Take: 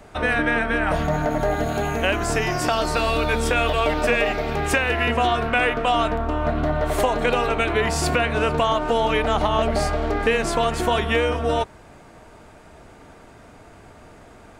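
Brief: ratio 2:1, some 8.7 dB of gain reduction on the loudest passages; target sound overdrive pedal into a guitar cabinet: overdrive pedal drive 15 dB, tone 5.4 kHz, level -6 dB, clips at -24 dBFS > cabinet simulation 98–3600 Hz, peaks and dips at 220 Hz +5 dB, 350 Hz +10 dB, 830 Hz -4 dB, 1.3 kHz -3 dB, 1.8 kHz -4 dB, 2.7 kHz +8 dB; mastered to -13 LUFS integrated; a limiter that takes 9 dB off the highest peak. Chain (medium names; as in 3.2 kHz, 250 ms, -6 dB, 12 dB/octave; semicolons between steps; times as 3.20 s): compression 2:1, threshold -32 dBFS; peak limiter -24 dBFS; overdrive pedal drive 15 dB, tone 5.4 kHz, level -6 dB, clips at -24 dBFS; cabinet simulation 98–3600 Hz, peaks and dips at 220 Hz +5 dB, 350 Hz +10 dB, 830 Hz -4 dB, 1.3 kHz -3 dB, 1.8 kHz -4 dB, 2.7 kHz +8 dB; trim +17 dB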